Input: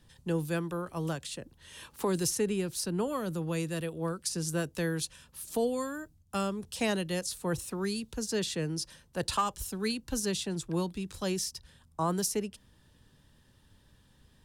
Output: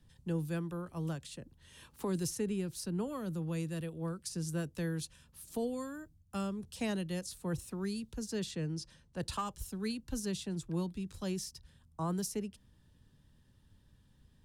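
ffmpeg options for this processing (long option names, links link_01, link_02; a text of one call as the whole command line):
ffmpeg -i in.wav -filter_complex "[0:a]asettb=1/sr,asplit=3[link_01][link_02][link_03];[link_01]atrim=end=8.514[link_04];[link_02]atrim=start=8.51:end=9.2,asetpts=PTS-STARTPTS,afade=type=in:duration=0.004:curve=qsin,afade=type=out:start_time=0.686:duration=0.004:curve=qsin,lowpass=8100[link_05];[link_03]atrim=start=9.196[link_06];[link_04][link_05]acrossfade=duration=0.004:curve1=hsin:curve2=qsin[link_07];[link_07][link_06]acrossfade=duration=0.004:curve1=qsin:curve2=hsin,acrossover=split=270[link_08][link_09];[link_08]acontrast=84[link_10];[link_10][link_09]amix=inputs=2:normalize=0,volume=-8.5dB" out.wav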